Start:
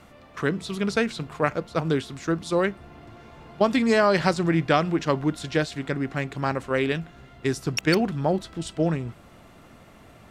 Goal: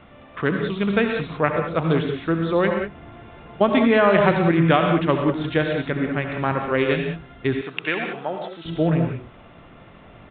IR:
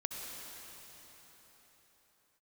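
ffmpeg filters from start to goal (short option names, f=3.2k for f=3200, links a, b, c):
-filter_complex "[1:a]atrim=start_sample=2205,afade=t=out:st=0.25:d=0.01,atrim=end_sample=11466[a];[0:a][a]afir=irnorm=-1:irlink=0,aresample=8000,aresample=44100,asettb=1/sr,asplit=3[b][c][d];[b]atrim=end=7.614[e];[c]atrim=start=7.61:end=8.65,asetpts=PTS-STARTPTS,afade=t=in:d=0.004:c=qsin,afade=t=out:st=1.036:d=0.004:c=qsin,highpass=f=1.1k:p=1[f];[d]atrim=start=8.646[g];[e][f]acrossfade=d=0.004:c1=hsin:c2=qsin[h];[h][g]acrossfade=d=0.004:c1=qsin:c2=hsin,volume=4.5dB"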